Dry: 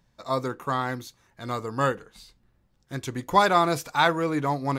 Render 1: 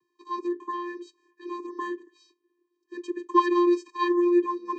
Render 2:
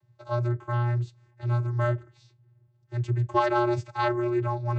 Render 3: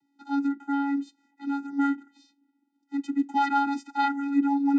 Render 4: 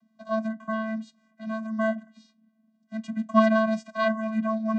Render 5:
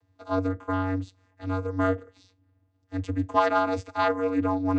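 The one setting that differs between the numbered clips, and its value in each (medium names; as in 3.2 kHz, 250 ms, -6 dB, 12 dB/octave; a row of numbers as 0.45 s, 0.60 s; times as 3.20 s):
vocoder, frequency: 350 Hz, 120 Hz, 280 Hz, 220 Hz, 94 Hz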